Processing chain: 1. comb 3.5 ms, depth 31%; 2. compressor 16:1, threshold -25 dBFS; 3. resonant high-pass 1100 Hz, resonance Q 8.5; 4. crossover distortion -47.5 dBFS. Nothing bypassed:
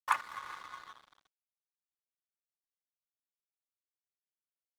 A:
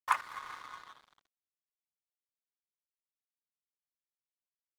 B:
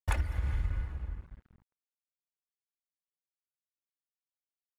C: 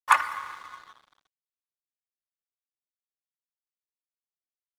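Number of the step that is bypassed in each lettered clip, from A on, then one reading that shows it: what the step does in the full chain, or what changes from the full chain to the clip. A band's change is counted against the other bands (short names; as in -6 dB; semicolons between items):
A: 1, momentary loudness spread change -3 LU; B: 3, crest factor change -11.0 dB; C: 2, mean gain reduction 3.0 dB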